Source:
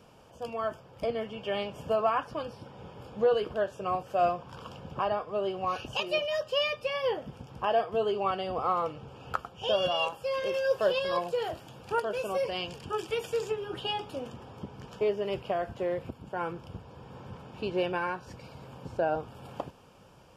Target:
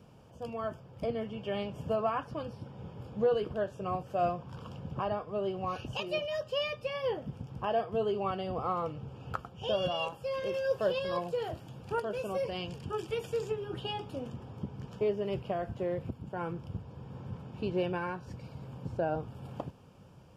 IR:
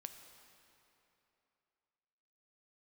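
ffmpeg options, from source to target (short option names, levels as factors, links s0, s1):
-af "equalizer=f=120:t=o:w=2.8:g=11,volume=0.501"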